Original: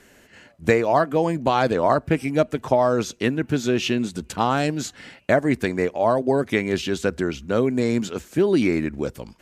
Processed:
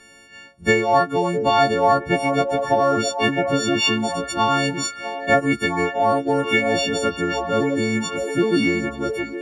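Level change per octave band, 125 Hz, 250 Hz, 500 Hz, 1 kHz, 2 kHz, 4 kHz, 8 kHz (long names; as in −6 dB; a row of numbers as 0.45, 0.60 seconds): −1.0, 0.0, +0.5, +4.5, +6.0, +7.5, +5.0 decibels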